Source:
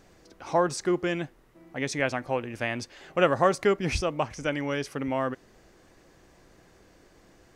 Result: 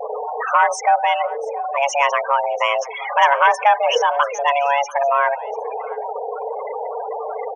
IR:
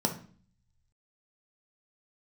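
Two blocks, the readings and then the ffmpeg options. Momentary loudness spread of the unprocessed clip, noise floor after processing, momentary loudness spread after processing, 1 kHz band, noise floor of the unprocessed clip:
11 LU, −30 dBFS, 12 LU, +16.5 dB, −58 dBFS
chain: -filter_complex "[0:a]aeval=exprs='val(0)+0.5*0.0282*sgn(val(0))':channel_layout=same,bandreject=frequency=169.4:width_type=h:width=4,bandreject=frequency=338.8:width_type=h:width=4,bandreject=frequency=508.2:width_type=h:width=4,bandreject=frequency=677.6:width_type=h:width=4,bandreject=frequency=847:width_type=h:width=4,bandreject=frequency=1016.4:width_type=h:width=4,bandreject=frequency=1185.8:width_type=h:width=4,bandreject=frequency=1355.2:width_type=h:width=4,bandreject=frequency=1524.6:width_type=h:width=4,bandreject=frequency=1694:width_type=h:width=4,bandreject=frequency=1863.4:width_type=h:width=4,bandreject=frequency=2032.8:width_type=h:width=4,bandreject=frequency=2202.2:width_type=h:width=4,bandreject=frequency=2371.6:width_type=h:width=4,bandreject=frequency=2541:width_type=h:width=4,bandreject=frequency=2710.4:width_type=h:width=4,bandreject=frequency=2879.8:width_type=h:width=4,bandreject=frequency=3049.2:width_type=h:width=4,bandreject=frequency=3218.6:width_type=h:width=4,bandreject=frequency=3388:width_type=h:width=4,bandreject=frequency=3557.4:width_type=h:width=4,bandreject=frequency=3726.8:width_type=h:width=4,afftfilt=real='re*gte(hypot(re,im),0.0447)':imag='im*gte(hypot(re,im),0.0447)':win_size=1024:overlap=0.75,equalizer=frequency=8300:width=0.87:gain=-14,asplit=2[link_01][link_02];[link_02]acompressor=threshold=-38dB:ratio=8,volume=1dB[link_03];[link_01][link_03]amix=inputs=2:normalize=0,aeval=exprs='0.473*sin(PI/2*1.58*val(0)/0.473)':channel_layout=same,afreqshift=420,asuperstop=centerf=4300:order=20:qfactor=2.2,aecho=1:1:691:0.0891,adynamicequalizer=threshold=0.0251:dfrequency=3900:dqfactor=0.7:tfrequency=3900:tqfactor=0.7:attack=5:release=100:ratio=0.375:range=2:mode=boostabove:tftype=highshelf"

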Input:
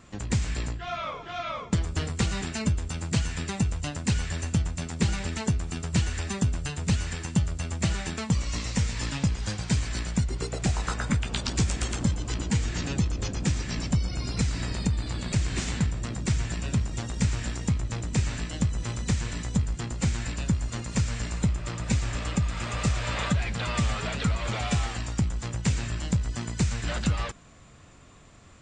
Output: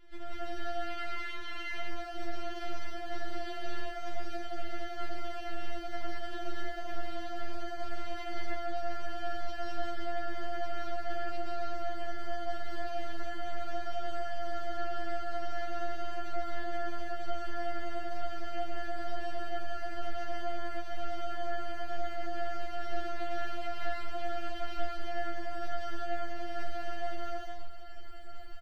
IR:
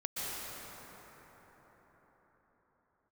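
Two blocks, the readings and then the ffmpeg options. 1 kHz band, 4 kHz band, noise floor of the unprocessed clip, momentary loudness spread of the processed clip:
+1.0 dB, −10.5 dB, −46 dBFS, 3 LU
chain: -filter_complex "[0:a]highshelf=frequency=2200:gain=-8.5,aecho=1:1:5.1:0.98,asubboost=boost=11.5:cutoff=60,alimiter=limit=-18.5dB:level=0:latency=1:release=168,aresample=11025,asoftclip=type=tanh:threshold=-28.5dB,aresample=44100,aeval=exprs='val(0)*sin(2*PI*750*n/s)':channel_layout=same,acrossover=split=450|1700[link_01][link_02][link_03];[link_02]aeval=exprs='abs(val(0))':channel_layout=same[link_04];[link_01][link_04][link_03]amix=inputs=3:normalize=0[link_05];[1:a]atrim=start_sample=2205,afade=type=out:start_time=0.43:duration=0.01,atrim=end_sample=19404[link_06];[link_05][link_06]afir=irnorm=-1:irlink=0,afftfilt=real='re*4*eq(mod(b,16),0)':imag='im*4*eq(mod(b,16),0)':win_size=2048:overlap=0.75,volume=1.5dB"

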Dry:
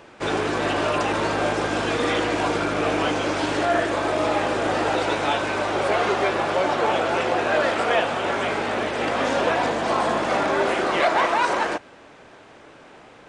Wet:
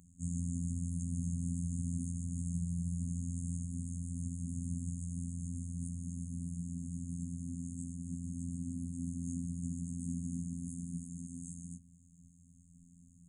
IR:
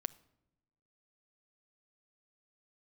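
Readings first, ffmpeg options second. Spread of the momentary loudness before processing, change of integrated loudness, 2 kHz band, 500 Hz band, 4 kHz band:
3 LU, −17.5 dB, below −40 dB, below −40 dB, below −40 dB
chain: -af "afftfilt=real='re*(1-between(b*sr/4096,240,6400))':imag='im*(1-between(b*sr/4096,240,6400))':win_size=4096:overlap=0.75,adynamicequalizer=threshold=0.001:dfrequency=6800:dqfactor=1.5:tfrequency=6800:tqfactor=1.5:attack=5:release=100:ratio=0.375:range=3:mode=cutabove:tftype=bell,afftfilt=real='hypot(re,im)*cos(PI*b)':imag='0':win_size=2048:overlap=0.75,volume=2.5dB"

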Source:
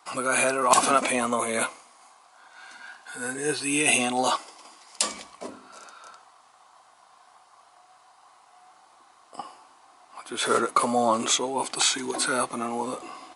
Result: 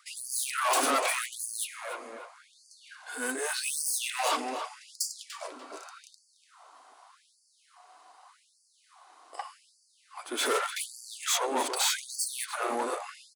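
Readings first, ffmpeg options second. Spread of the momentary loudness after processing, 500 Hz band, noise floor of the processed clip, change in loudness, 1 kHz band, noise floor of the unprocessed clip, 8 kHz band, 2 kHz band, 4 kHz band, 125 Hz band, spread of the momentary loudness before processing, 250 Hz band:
19 LU, −7.0 dB, −68 dBFS, −6.0 dB, −6.5 dB, −57 dBFS, −4.0 dB, −5.5 dB, −3.5 dB, below −25 dB, 21 LU, −11.0 dB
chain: -filter_complex "[0:a]lowshelf=frequency=150:gain=8.5,aeval=exprs='(tanh(20*val(0)+0.7)-tanh(0.7))/20':channel_layout=same,asplit=2[link_01][link_02];[link_02]adelay=293,lowpass=frequency=2400:poles=1,volume=-7dB,asplit=2[link_03][link_04];[link_04]adelay=293,lowpass=frequency=2400:poles=1,volume=0.46,asplit=2[link_05][link_06];[link_06]adelay=293,lowpass=frequency=2400:poles=1,volume=0.46,asplit=2[link_07][link_08];[link_08]adelay=293,lowpass=frequency=2400:poles=1,volume=0.46,asplit=2[link_09][link_10];[link_10]adelay=293,lowpass=frequency=2400:poles=1,volume=0.46[link_11];[link_03][link_05][link_07][link_09][link_11]amix=inputs=5:normalize=0[link_12];[link_01][link_12]amix=inputs=2:normalize=0,afftfilt=real='re*gte(b*sr/1024,220*pow(4500/220,0.5+0.5*sin(2*PI*0.84*pts/sr)))':imag='im*gte(b*sr/1024,220*pow(4500/220,0.5+0.5*sin(2*PI*0.84*pts/sr)))':win_size=1024:overlap=0.75,volume=3dB"

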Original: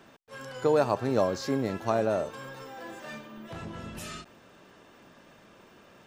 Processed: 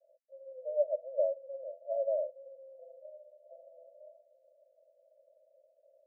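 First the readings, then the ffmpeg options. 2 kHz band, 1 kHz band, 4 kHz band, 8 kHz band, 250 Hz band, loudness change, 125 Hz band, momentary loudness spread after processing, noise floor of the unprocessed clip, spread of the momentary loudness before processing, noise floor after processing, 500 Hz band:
below −40 dB, below −15 dB, below −40 dB, below −35 dB, below −40 dB, −5.0 dB, below −40 dB, 20 LU, −56 dBFS, 18 LU, −71 dBFS, −5.0 dB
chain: -af "asuperpass=centerf=580:order=12:qfactor=3.8,volume=-2dB"

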